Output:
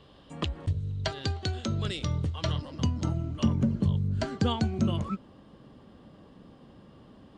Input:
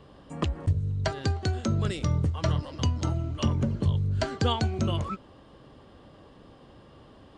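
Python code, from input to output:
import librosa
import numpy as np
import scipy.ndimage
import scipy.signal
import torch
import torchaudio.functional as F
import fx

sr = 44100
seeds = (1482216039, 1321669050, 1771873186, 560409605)

y = fx.peak_eq(x, sr, hz=fx.steps((0.0, 3500.0), (2.62, 200.0)), db=9.0, octaves=0.96)
y = F.gain(torch.from_numpy(y), -4.0).numpy()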